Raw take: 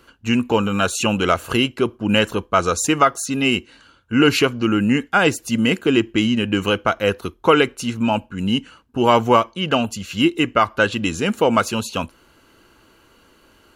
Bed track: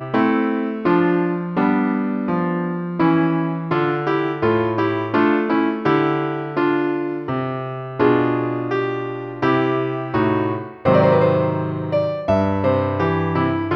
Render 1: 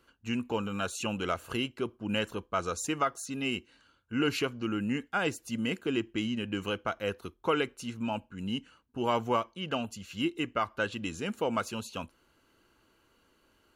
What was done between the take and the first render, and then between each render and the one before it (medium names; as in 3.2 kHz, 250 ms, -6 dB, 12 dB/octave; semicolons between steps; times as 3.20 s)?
trim -14 dB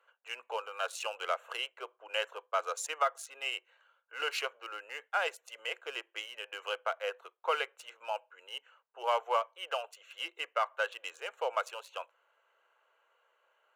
local Wiener filter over 9 samples; steep high-pass 500 Hz 48 dB/octave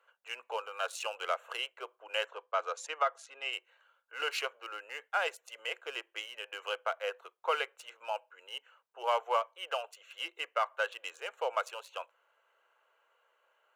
2.26–3.53 s: distance through air 83 m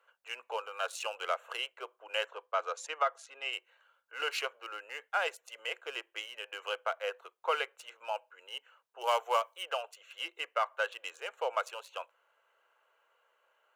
9.01–9.63 s: treble shelf 4.6 kHz +12 dB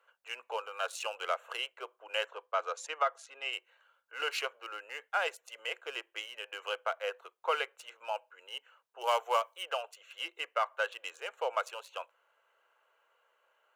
no audible change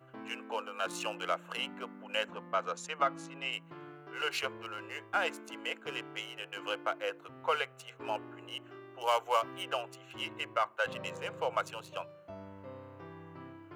add bed track -30 dB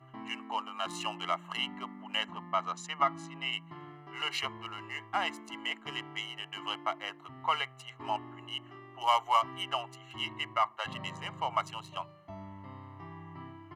treble shelf 10 kHz -12 dB; comb 1 ms, depth 89%